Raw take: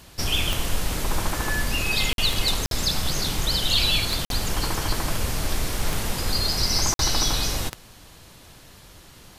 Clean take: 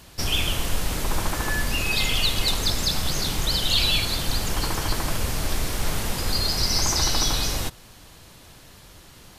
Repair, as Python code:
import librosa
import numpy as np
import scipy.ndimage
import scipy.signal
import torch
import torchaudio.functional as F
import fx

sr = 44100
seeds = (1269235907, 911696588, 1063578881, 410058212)

y = fx.fix_declick_ar(x, sr, threshold=10.0)
y = fx.fix_interpolate(y, sr, at_s=(2.13, 2.66, 4.25, 6.94), length_ms=52.0)